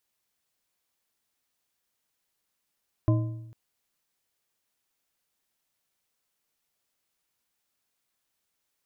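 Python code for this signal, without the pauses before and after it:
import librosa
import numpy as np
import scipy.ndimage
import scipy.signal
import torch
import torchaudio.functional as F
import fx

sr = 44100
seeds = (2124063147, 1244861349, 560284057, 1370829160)

y = fx.strike_metal(sr, length_s=0.45, level_db=-17.5, body='bar', hz=115.0, decay_s=0.93, tilt_db=6, modes=4)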